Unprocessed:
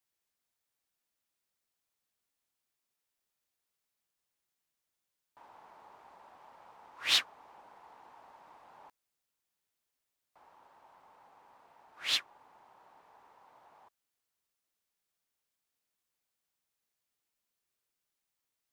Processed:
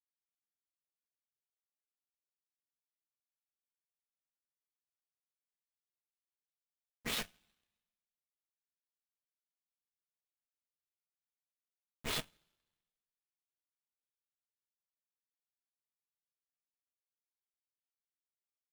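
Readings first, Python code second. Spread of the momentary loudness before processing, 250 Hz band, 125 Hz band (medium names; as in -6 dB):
12 LU, +10.5 dB, no reading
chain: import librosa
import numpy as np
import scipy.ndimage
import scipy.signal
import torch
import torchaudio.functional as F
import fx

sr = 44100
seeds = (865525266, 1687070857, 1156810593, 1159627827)

y = fx.schmitt(x, sr, flips_db=-34.0)
y = fx.rev_double_slope(y, sr, seeds[0], early_s=0.23, late_s=2.5, knee_db=-22, drr_db=-5.5)
y = fx.power_curve(y, sr, exponent=2.0)
y = F.gain(torch.from_numpy(y), 11.5).numpy()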